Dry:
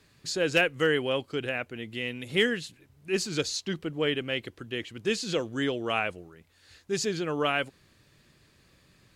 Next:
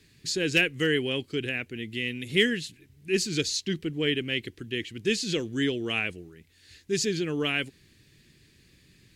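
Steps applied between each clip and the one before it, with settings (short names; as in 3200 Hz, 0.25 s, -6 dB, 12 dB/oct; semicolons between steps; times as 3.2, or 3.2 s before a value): band shelf 860 Hz -12.5 dB; gain +3 dB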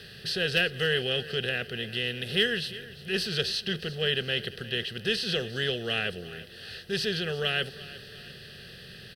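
per-bin compression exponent 0.6; fixed phaser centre 1500 Hz, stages 8; feedback echo 0.35 s, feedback 48%, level -17.5 dB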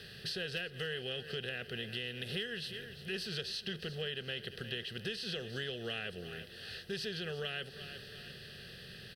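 compressor 6:1, threshold -32 dBFS, peak gain reduction 12 dB; gain -4 dB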